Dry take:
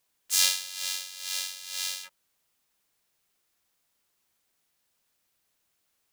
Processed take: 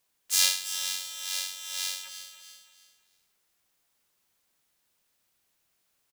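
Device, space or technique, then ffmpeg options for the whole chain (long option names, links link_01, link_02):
ducked delay: -filter_complex "[0:a]aecho=1:1:332|664|996:0.251|0.0779|0.0241,asplit=3[link_01][link_02][link_03];[link_02]adelay=284,volume=-7dB[link_04];[link_03]apad=whole_len=326456[link_05];[link_04][link_05]sidechaincompress=threshold=-44dB:ratio=8:attack=30:release=345[link_06];[link_01][link_06]amix=inputs=2:normalize=0,asplit=3[link_07][link_08][link_09];[link_07]afade=type=out:start_time=0.58:duration=0.02[link_10];[link_08]asubboost=boost=10:cutoff=200,afade=type=in:start_time=0.58:duration=0.02,afade=type=out:start_time=0.99:duration=0.02[link_11];[link_09]afade=type=in:start_time=0.99:duration=0.02[link_12];[link_10][link_11][link_12]amix=inputs=3:normalize=0"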